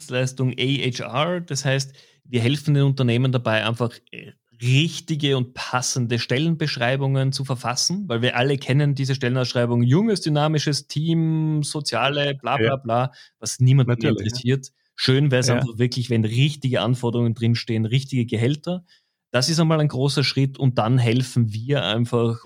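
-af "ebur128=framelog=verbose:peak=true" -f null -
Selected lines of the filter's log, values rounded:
Integrated loudness:
  I:         -21.3 LUFS
  Threshold: -31.5 LUFS
Loudness range:
  LRA:         1.8 LU
  Threshold: -41.5 LUFS
  LRA low:   -22.4 LUFS
  LRA high:  -20.6 LUFS
True peak:
  Peak:       -3.7 dBFS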